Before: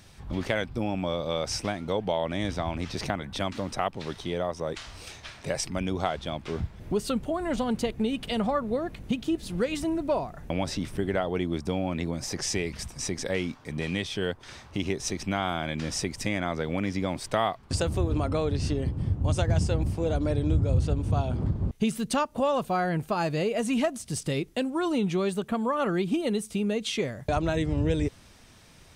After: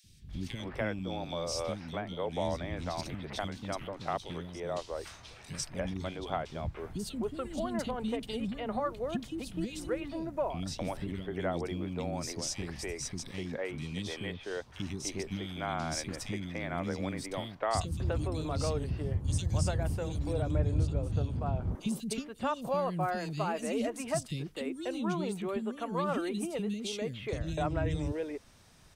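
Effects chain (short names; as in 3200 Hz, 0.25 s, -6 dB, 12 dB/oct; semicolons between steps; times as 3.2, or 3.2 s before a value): 18.12–20.51 high shelf 6300 Hz +9 dB; three bands offset in time highs, lows, mids 40/290 ms, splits 310/2600 Hz; gain -5 dB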